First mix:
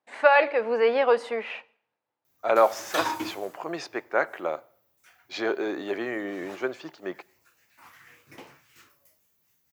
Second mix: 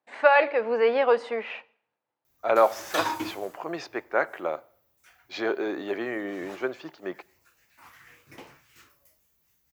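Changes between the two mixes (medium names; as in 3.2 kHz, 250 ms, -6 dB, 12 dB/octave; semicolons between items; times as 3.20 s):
speech: add distance through air 61 m; background: remove high-pass 97 Hz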